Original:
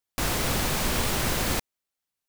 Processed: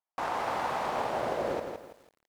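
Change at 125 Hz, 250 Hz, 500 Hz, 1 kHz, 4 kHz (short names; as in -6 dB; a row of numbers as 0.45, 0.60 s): -17.0, -9.5, +1.0, +2.0, -15.0 dB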